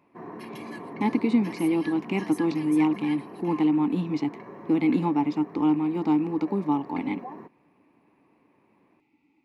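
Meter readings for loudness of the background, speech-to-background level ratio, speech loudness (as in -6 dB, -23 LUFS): -41.0 LUFS, 15.5 dB, -25.5 LUFS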